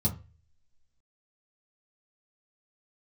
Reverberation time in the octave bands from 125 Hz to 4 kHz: 0.55, 0.30, 0.35, 0.30, 0.35, 0.25 seconds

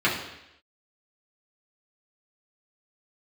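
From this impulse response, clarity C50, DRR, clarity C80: 5.5 dB, −7.5 dB, 8.5 dB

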